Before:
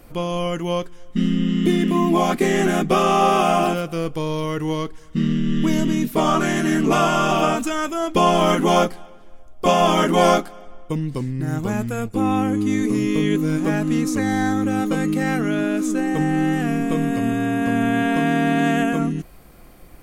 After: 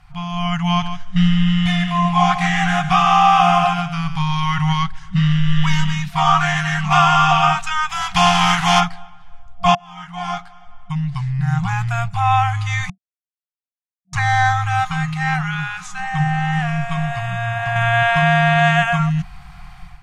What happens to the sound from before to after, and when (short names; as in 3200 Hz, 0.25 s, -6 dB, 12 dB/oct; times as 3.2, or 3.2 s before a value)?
0.62–4.83 echo 0.145 s -10.5 dB
7.89–8.79 spectral contrast lowered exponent 0.61
9.75–12.4 fade in linear
12.9–14.13 mute
14.91–17.76 flange 1.7 Hz, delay 4 ms, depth 6.2 ms, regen +83%
whole clip: FFT band-reject 190–690 Hz; LPF 4500 Hz 12 dB/oct; AGC gain up to 10.5 dB